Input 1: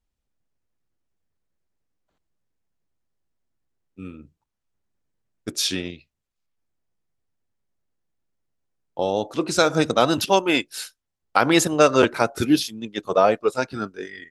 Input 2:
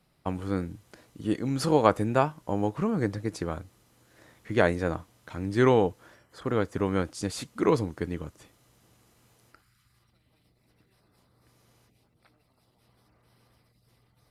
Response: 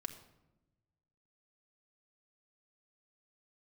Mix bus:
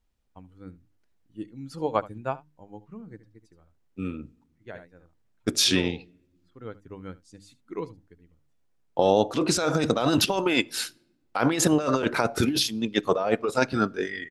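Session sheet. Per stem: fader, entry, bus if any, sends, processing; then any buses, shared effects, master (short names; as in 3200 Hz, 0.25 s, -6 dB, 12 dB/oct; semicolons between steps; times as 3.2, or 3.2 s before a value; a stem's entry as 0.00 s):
0.0 dB, 0.00 s, send -14 dB, no echo send, negative-ratio compressor -23 dBFS, ratio -1
-2.0 dB, 0.10 s, no send, echo send -20 dB, per-bin expansion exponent 1.5; notches 50/100/150/200/250/300 Hz; upward expander 1.5:1, over -38 dBFS; auto duck -12 dB, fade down 1.60 s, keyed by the first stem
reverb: on, RT60 1.0 s, pre-delay 4 ms
echo: echo 73 ms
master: high shelf 6000 Hz -5 dB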